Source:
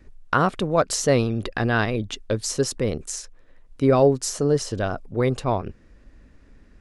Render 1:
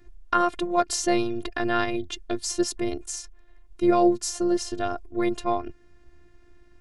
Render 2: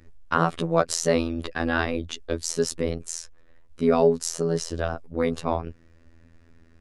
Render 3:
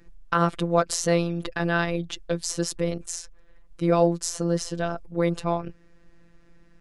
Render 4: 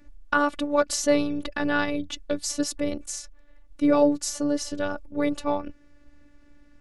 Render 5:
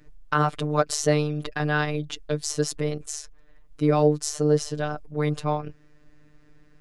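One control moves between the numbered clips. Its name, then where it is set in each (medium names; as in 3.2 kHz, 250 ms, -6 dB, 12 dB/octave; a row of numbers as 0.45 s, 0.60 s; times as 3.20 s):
robot voice, frequency: 350 Hz, 83 Hz, 170 Hz, 290 Hz, 150 Hz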